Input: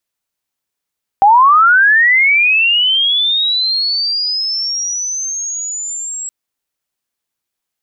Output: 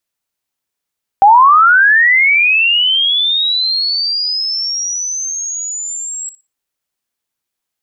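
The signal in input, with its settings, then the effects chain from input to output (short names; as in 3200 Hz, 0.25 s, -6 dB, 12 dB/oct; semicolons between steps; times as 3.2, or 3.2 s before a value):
chirp linear 770 Hz -> 7700 Hz -4 dBFS -> -21 dBFS 5.07 s
dynamic EQ 420 Hz, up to +4 dB, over -28 dBFS, Q 0.84; flutter echo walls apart 10.2 m, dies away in 0.24 s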